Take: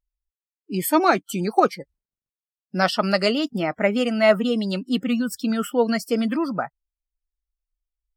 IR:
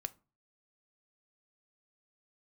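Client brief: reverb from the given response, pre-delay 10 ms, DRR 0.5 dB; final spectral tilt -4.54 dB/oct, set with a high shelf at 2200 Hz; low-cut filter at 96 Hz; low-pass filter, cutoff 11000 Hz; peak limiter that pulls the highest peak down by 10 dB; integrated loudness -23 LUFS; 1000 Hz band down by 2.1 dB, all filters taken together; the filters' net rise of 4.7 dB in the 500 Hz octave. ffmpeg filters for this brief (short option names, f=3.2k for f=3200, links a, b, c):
-filter_complex "[0:a]highpass=96,lowpass=11k,equalizer=f=500:t=o:g=8.5,equalizer=f=1k:t=o:g=-9,highshelf=f=2.2k:g=6.5,alimiter=limit=-12.5dB:level=0:latency=1,asplit=2[a][b];[1:a]atrim=start_sample=2205,adelay=10[c];[b][c]afir=irnorm=-1:irlink=0,volume=1.5dB[d];[a][d]amix=inputs=2:normalize=0,volume=-3dB"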